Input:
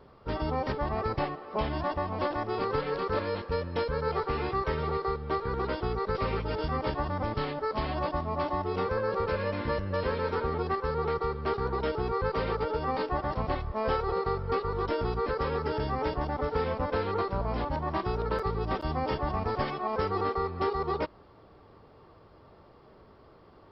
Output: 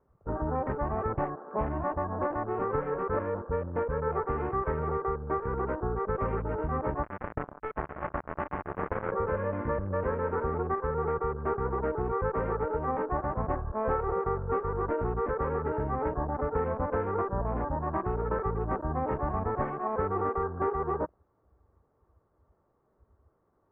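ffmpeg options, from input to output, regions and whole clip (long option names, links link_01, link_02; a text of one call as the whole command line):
ffmpeg -i in.wav -filter_complex "[0:a]asettb=1/sr,asplit=3[link_01][link_02][link_03];[link_01]atrim=end=7.034[link_04];[link_02]atrim=start=7.03:end=9.12,asetpts=PTS-STARTPTS,afade=type=in:duration=0.004:curve=qsin,afade=type=out:start_time=2.086:duration=0.004:curve=qsin,acrusher=bits=3:mix=0:aa=0.5,aecho=1:1:275:0.178,atrim=end_sample=92169[link_05];[link_03]atrim=start=9.116[link_06];[link_04][link_05]acrossfade=duration=0.004:curve1=hsin:curve2=qsin[link_07];[link_07][link_06]acrossfade=duration=0.004:curve1=qsin:curve2=hsin,afwtdn=0.01,lowpass=frequency=1700:width=0.5412,lowpass=frequency=1700:width=1.3066" out.wav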